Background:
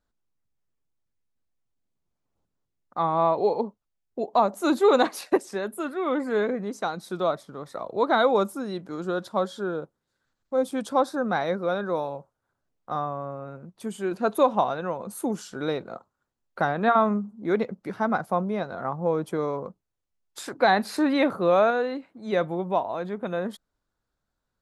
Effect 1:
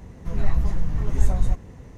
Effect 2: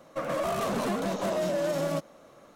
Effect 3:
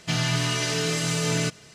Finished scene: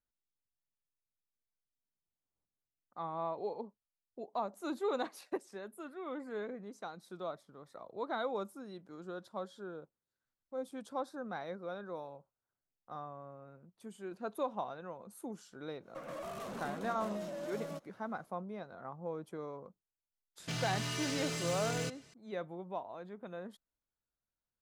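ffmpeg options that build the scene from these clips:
-filter_complex "[0:a]volume=-16dB[a];[3:a]asoftclip=type=hard:threshold=-22dB[b];[2:a]atrim=end=2.55,asetpts=PTS-STARTPTS,volume=-14dB,afade=t=in:d=0.1,afade=t=out:st=2.45:d=0.1,adelay=15790[c];[b]atrim=end=1.74,asetpts=PTS-STARTPTS,volume=-11.5dB,afade=t=in:d=0.004:c=hsin,afade=t=out:st=1.736:d=0.004:c=hsin,adelay=20400[d];[a][c][d]amix=inputs=3:normalize=0"

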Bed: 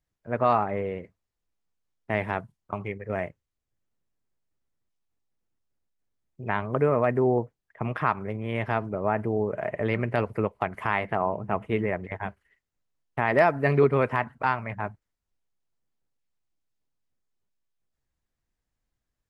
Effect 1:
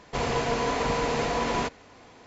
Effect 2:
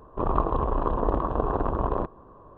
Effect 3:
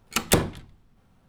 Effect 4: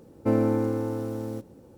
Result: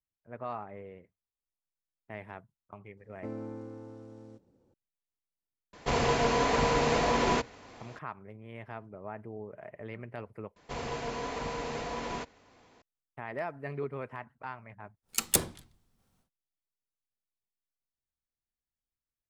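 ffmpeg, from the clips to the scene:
-filter_complex "[1:a]asplit=2[a][b];[0:a]volume=-16dB[c];[4:a]lowpass=f=7.6k:w=0.5412,lowpass=f=7.6k:w=1.3066[d];[3:a]bass=f=250:g=-2,treble=f=4k:g=12[e];[c]asplit=2[f][g];[f]atrim=end=10.564[h];[b]atrim=end=2.26,asetpts=PTS-STARTPTS,volume=-9.5dB[i];[g]atrim=start=12.816[j];[d]atrim=end=1.77,asetpts=PTS-STARTPTS,volume=-17dB,afade=t=in:d=0.004:c=hsin,afade=t=out:st=1.766:d=0.004:c=hsin,adelay=2970[k];[a]atrim=end=2.26,asetpts=PTS-STARTPTS,afade=t=in:d=0.004:c=hsin,afade=t=out:st=2.256:d=0.004:c=hsin,adelay=252693S[l];[e]atrim=end=1.28,asetpts=PTS-STARTPTS,volume=-11.5dB,afade=t=in:d=0.1,afade=t=out:st=1.18:d=0.1,adelay=15020[m];[h][i]acrossfade=d=0.004:c1=hsin:c2=hsin[n];[n][j]acrossfade=d=0.004:c1=hsin:c2=hsin[o];[o][k][l][m]amix=inputs=4:normalize=0"

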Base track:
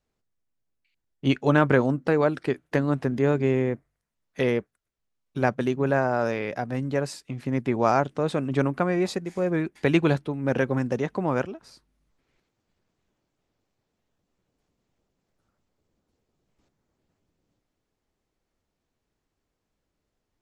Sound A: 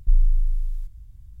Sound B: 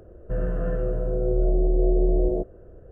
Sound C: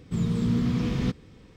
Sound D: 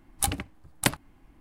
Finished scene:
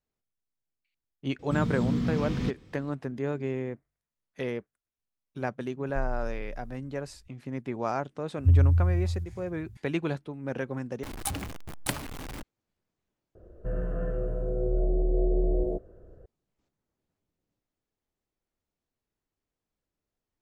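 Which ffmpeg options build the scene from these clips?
-filter_complex "[1:a]asplit=2[a][b];[0:a]volume=-9dB[c];[b]afreqshift=58[d];[4:a]aeval=exprs='val(0)+0.5*0.0596*sgn(val(0))':c=same[e];[c]asplit=2[f][g];[f]atrim=end=11.034[h];[e]atrim=end=1.4,asetpts=PTS-STARTPTS,volume=-8.5dB[i];[g]atrim=start=12.426[j];[3:a]atrim=end=1.56,asetpts=PTS-STARTPTS,volume=-3.5dB,afade=t=in:d=0.004:c=hsin,afade=t=out:st=1.556:d=0.004:c=hsin,adelay=1390[k];[a]atrim=end=1.4,asetpts=PTS-STARTPTS,volume=-15dB,afade=t=in:d=0.004:c=hsin,afade=t=out:st=1.396:d=0.004:c=hsin,adelay=5880[l];[d]atrim=end=1.4,asetpts=PTS-STARTPTS,volume=-4.5dB,afade=t=in:d=0.004:c=hsin,afade=t=out:st=1.396:d=0.004:c=hsin,adelay=8370[m];[2:a]atrim=end=2.91,asetpts=PTS-STARTPTS,volume=-5dB,afade=t=in:d=0.004:c=hsin,afade=t=out:st=2.906:d=0.004:c=hsin,adelay=13350[n];[h][i]acrossfade=d=0.004:c1=hsin:c2=hsin[o];[o][j]acrossfade=d=0.004:c1=hsin:c2=hsin[p];[p][k][l][m][n]amix=inputs=5:normalize=0"

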